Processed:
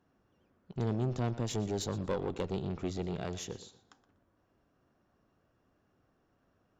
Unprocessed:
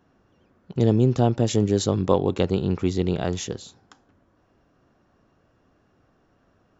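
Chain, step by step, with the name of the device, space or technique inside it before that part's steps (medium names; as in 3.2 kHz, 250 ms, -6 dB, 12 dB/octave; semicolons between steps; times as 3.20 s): rockabilly slapback (valve stage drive 17 dB, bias 0.4; tape echo 119 ms, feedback 29%, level -14 dB, low-pass 4.9 kHz); trim -8.5 dB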